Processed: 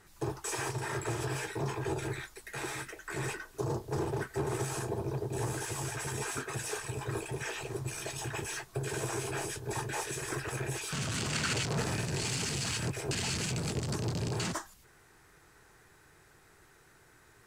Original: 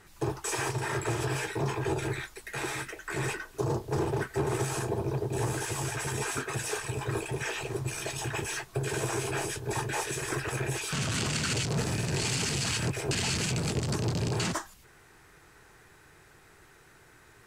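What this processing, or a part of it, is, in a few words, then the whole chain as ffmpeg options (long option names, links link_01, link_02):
exciter from parts: -filter_complex "[0:a]asettb=1/sr,asplit=3[link_01][link_02][link_03];[link_01]atrim=end=11.314[link_04];[link_02]atrim=start=11.31:end=12.04,asetpts=PTS-STARTPTS,afade=type=in:duration=0.004:curve=qsin,afade=type=out:start_time=0.726:duration=0.004:curve=qsin,equalizer=frequency=1300:width=0.43:gain=5[link_05];[link_03]atrim=start=12.036[link_06];[link_04][link_05]acrossfade=duration=0.004:curve1=hsin:curve2=qsin[link_07];[link_07][link_06]acrossfade=duration=0.004:curve1=qsin:curve2=hsin,asplit=2[link_08][link_09];[link_09]highpass=frequency=2400:width=0.5412,highpass=frequency=2400:width=1.3066,asoftclip=type=tanh:threshold=-38dB,volume=-12dB[link_10];[link_08][link_10]amix=inputs=2:normalize=0,volume=-4dB"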